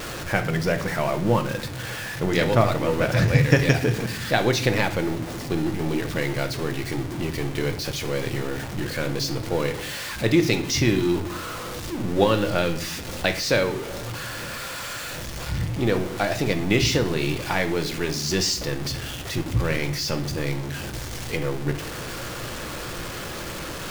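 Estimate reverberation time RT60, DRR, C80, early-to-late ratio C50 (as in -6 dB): 0.55 s, 6.5 dB, 16.5 dB, 13.0 dB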